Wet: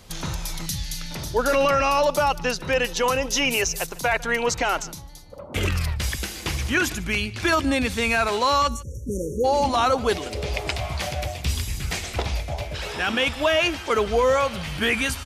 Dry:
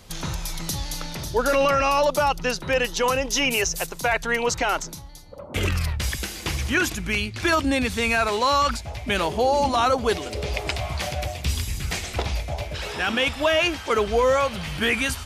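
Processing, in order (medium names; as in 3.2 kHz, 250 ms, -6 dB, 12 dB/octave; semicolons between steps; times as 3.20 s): 0.66–1.11 s: high-order bell 590 Hz -12.5 dB 2.5 oct; 8.68–9.45 s: spectral selection erased 570–5500 Hz; on a send: delay 149 ms -21.5 dB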